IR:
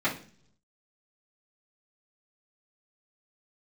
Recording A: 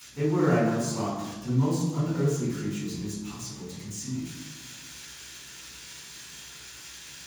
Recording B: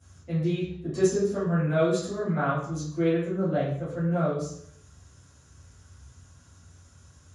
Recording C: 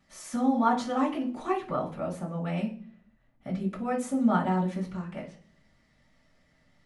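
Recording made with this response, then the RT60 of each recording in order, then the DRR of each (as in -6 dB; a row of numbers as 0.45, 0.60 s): C; 1.2, 0.65, 0.45 s; -11.5, -12.5, -11.0 dB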